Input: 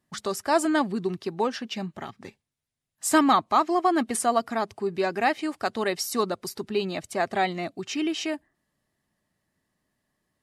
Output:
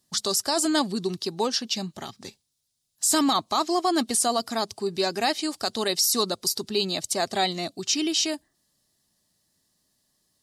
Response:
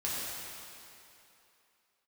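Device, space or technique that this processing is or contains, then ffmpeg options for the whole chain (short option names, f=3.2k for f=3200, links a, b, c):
over-bright horn tweeter: -af "highshelf=f=3.1k:t=q:w=1.5:g=12,alimiter=limit=-13dB:level=0:latency=1:release=18"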